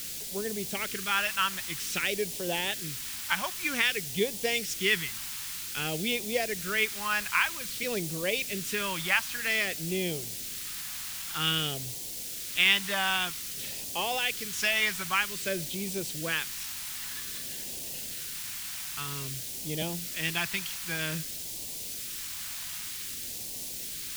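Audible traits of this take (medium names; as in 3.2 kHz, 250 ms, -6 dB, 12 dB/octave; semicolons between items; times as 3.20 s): a quantiser's noise floor 6-bit, dither triangular; phasing stages 2, 0.52 Hz, lowest notch 440–1300 Hz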